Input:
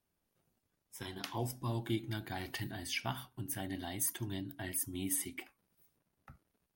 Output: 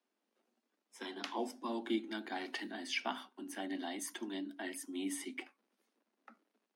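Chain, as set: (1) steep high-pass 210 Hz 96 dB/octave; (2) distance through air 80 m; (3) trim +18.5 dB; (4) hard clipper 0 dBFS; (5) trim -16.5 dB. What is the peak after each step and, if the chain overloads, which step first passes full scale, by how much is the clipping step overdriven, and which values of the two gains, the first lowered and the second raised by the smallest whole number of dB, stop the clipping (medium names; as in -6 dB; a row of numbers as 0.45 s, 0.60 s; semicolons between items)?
-20.5 dBFS, -23.0 dBFS, -4.5 dBFS, -4.5 dBFS, -21.0 dBFS; nothing clips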